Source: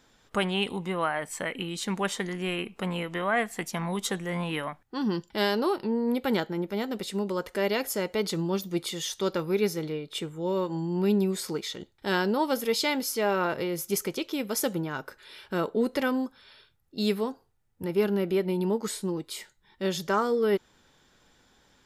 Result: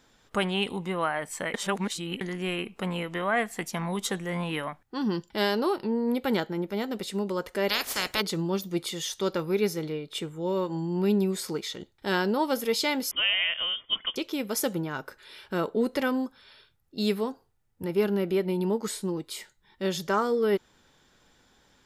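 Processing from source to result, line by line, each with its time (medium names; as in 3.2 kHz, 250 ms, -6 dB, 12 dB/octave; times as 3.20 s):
1.54–2.21 s: reverse
7.68–8.20 s: spectral peaks clipped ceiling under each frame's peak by 29 dB
13.11–14.16 s: frequency inversion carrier 3.4 kHz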